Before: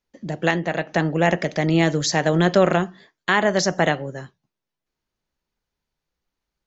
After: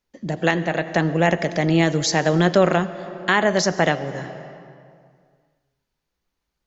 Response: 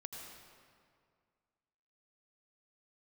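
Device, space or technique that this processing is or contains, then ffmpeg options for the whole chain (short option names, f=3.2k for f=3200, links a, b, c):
compressed reverb return: -filter_complex "[0:a]asplit=2[a][b];[1:a]atrim=start_sample=2205[c];[b][c]afir=irnorm=-1:irlink=0,acompressor=threshold=-27dB:ratio=6,volume=-0.5dB[d];[a][d]amix=inputs=2:normalize=0,volume=-1dB"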